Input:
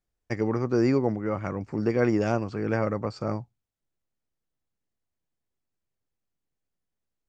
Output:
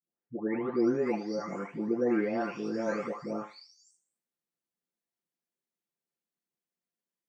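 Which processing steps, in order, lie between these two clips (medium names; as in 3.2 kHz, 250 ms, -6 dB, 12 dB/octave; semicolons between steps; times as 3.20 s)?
delay that grows with frequency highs late, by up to 786 ms; high-pass 170 Hz 24 dB/octave; thinning echo 76 ms, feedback 17%, high-pass 420 Hz, level -13 dB; trim -2.5 dB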